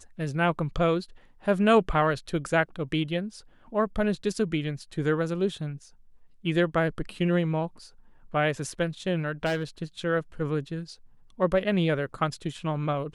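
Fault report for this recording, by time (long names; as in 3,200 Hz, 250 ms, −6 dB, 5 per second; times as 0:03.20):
0:09.45–0:09.82: clipping −23 dBFS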